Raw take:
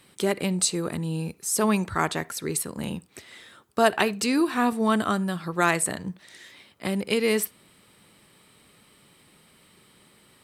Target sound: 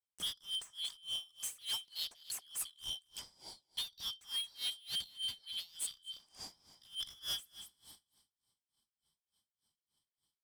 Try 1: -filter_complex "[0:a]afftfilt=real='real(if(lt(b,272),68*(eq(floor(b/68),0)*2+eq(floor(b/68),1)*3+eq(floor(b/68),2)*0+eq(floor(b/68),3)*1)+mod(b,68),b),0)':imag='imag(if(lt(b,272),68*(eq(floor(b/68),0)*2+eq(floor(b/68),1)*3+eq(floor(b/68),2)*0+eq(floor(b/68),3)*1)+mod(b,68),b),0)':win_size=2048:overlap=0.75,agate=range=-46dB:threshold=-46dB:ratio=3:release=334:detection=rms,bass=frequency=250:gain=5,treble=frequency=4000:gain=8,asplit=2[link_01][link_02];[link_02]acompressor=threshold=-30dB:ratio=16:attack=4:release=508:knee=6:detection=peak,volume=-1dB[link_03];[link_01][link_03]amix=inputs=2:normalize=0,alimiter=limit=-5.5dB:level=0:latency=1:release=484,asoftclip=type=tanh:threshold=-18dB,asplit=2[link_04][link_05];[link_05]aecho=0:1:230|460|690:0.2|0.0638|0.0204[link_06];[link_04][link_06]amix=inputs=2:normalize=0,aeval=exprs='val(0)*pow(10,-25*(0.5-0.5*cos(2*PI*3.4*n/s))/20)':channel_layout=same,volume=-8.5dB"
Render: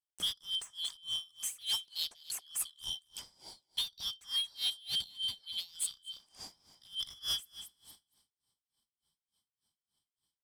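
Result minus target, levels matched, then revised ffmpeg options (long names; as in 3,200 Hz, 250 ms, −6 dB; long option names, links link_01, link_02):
soft clipping: distortion −4 dB
-filter_complex "[0:a]afftfilt=real='real(if(lt(b,272),68*(eq(floor(b/68),0)*2+eq(floor(b/68),1)*3+eq(floor(b/68),2)*0+eq(floor(b/68),3)*1)+mod(b,68),b),0)':imag='imag(if(lt(b,272),68*(eq(floor(b/68),0)*2+eq(floor(b/68),1)*3+eq(floor(b/68),2)*0+eq(floor(b/68),3)*1)+mod(b,68),b),0)':win_size=2048:overlap=0.75,agate=range=-46dB:threshold=-46dB:ratio=3:release=334:detection=rms,bass=frequency=250:gain=5,treble=frequency=4000:gain=8,asplit=2[link_01][link_02];[link_02]acompressor=threshold=-30dB:ratio=16:attack=4:release=508:knee=6:detection=peak,volume=-1dB[link_03];[link_01][link_03]amix=inputs=2:normalize=0,alimiter=limit=-5.5dB:level=0:latency=1:release=484,asoftclip=type=tanh:threshold=-25dB,asplit=2[link_04][link_05];[link_05]aecho=0:1:230|460|690:0.2|0.0638|0.0204[link_06];[link_04][link_06]amix=inputs=2:normalize=0,aeval=exprs='val(0)*pow(10,-25*(0.5-0.5*cos(2*PI*3.4*n/s))/20)':channel_layout=same,volume=-8.5dB"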